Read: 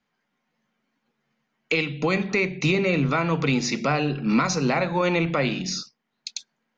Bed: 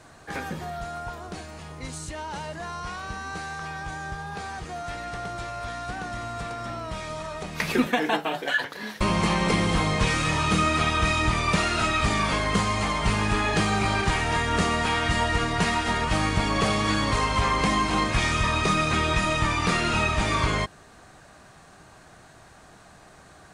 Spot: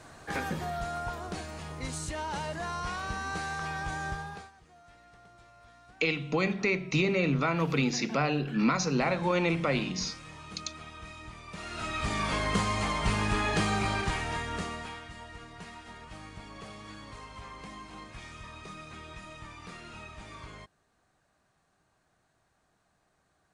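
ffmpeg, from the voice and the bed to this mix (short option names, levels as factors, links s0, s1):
-filter_complex "[0:a]adelay=4300,volume=0.562[s0];[1:a]volume=7.5,afade=t=out:st=4.09:d=0.42:silence=0.0794328,afade=t=in:st=11.51:d=0.93:silence=0.125893,afade=t=out:st=13.69:d=1.39:silence=0.133352[s1];[s0][s1]amix=inputs=2:normalize=0"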